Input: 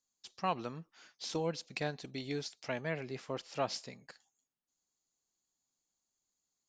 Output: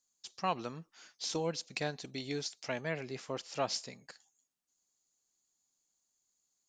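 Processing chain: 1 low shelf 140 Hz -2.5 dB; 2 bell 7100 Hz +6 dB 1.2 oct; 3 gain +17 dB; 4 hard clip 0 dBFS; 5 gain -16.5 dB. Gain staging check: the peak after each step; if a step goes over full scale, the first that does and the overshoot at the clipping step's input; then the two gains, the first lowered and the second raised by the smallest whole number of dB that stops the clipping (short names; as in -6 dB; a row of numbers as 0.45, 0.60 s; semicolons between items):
-20.5, -20.0, -3.0, -3.0, -19.5 dBFS; no overload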